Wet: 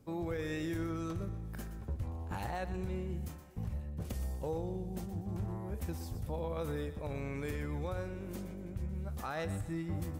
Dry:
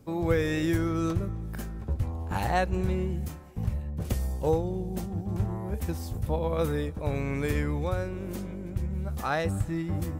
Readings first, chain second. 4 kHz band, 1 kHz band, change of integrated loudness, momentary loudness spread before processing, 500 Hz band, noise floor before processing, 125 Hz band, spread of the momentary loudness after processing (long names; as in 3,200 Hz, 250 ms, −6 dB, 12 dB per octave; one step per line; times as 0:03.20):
−9.5 dB, −10.5 dB, −9.0 dB, 8 LU, −10.0 dB, −38 dBFS, −9.0 dB, 5 LU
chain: brickwall limiter −22 dBFS, peak gain reduction 9 dB
feedback echo with a high-pass in the loop 121 ms, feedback 31%, level −11.5 dB
level −7 dB